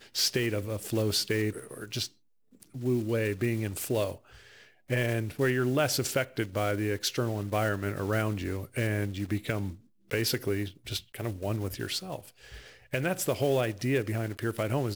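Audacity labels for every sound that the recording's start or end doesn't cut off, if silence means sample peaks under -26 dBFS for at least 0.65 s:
2.840000	4.120000	sound
4.910000	12.150000	sound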